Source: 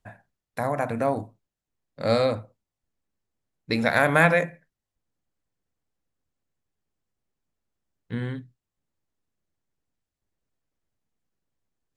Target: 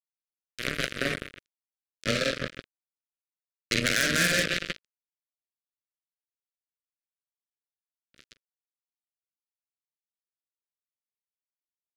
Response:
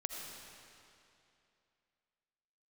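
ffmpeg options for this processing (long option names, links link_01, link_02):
-filter_complex "[0:a]aeval=exprs='0.631*(cos(1*acos(clip(val(0)/0.631,-1,1)))-cos(1*PI/2))+0.112*(cos(2*acos(clip(val(0)/0.631,-1,1)))-cos(2*PI/2))':channel_layout=same,afreqshift=13,highpass=90,equalizer=frequency=150:width_type=o:width=0.2:gain=3,asplit=2[link_01][link_02];[link_02]adelay=309,lowpass=frequency=1100:poles=1,volume=-7dB,asplit=2[link_03][link_04];[link_04]adelay=309,lowpass=frequency=1100:poles=1,volume=0.38,asplit=2[link_05][link_06];[link_06]adelay=309,lowpass=frequency=1100:poles=1,volume=0.38,asplit=2[link_07][link_08];[link_08]adelay=309,lowpass=frequency=1100:poles=1,volume=0.38[link_09];[link_03][link_05][link_07][link_09]amix=inputs=4:normalize=0[link_10];[link_01][link_10]amix=inputs=2:normalize=0,acrossover=split=3500[link_11][link_12];[link_12]acompressor=threshold=-51dB:ratio=4:attack=1:release=60[link_13];[link_11][link_13]amix=inputs=2:normalize=0,asplit=2[link_14][link_15];[link_15]aecho=0:1:46.65|174.9:0.794|0.501[link_16];[link_14][link_16]amix=inputs=2:normalize=0,acrusher=bits=2:mix=0:aa=0.5,acompressor=threshold=-21dB:ratio=10,asuperstop=centerf=870:order=4:qfactor=0.97,highshelf=frequency=2200:gain=10.5"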